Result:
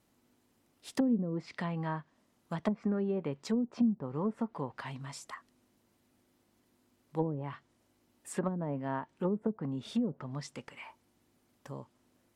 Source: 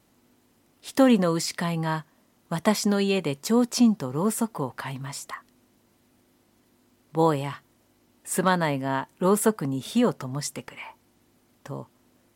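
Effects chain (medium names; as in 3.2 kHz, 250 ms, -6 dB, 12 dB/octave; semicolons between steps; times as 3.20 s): low-pass that closes with the level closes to 310 Hz, closed at -17 dBFS; time-frequency box 2.76–2.99 s, 1.1–2.9 kHz +10 dB; trim -8 dB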